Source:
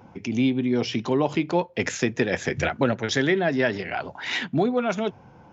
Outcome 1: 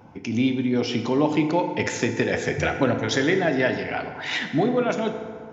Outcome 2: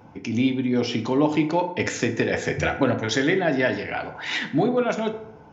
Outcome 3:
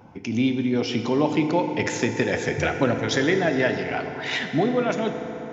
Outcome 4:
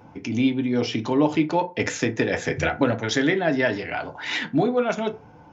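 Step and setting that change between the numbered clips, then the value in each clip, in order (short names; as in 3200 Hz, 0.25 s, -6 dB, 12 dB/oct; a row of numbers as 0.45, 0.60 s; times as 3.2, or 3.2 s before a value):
FDN reverb, RT60: 2, 0.79, 4.2, 0.3 s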